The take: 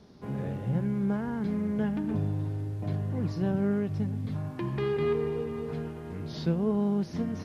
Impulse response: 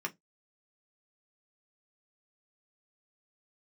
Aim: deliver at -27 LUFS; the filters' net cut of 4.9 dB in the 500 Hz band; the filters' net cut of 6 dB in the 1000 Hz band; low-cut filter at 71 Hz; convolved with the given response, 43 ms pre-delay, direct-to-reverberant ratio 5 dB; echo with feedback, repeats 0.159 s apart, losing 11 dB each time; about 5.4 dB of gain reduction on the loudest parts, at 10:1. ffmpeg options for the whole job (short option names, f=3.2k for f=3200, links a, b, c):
-filter_complex "[0:a]highpass=71,equalizer=f=500:t=o:g=-5.5,equalizer=f=1k:t=o:g=-6,acompressor=threshold=-30dB:ratio=10,aecho=1:1:159|318|477:0.282|0.0789|0.0221,asplit=2[a][b];[1:a]atrim=start_sample=2205,adelay=43[c];[b][c]afir=irnorm=-1:irlink=0,volume=-8dB[d];[a][d]amix=inputs=2:normalize=0,volume=7.5dB"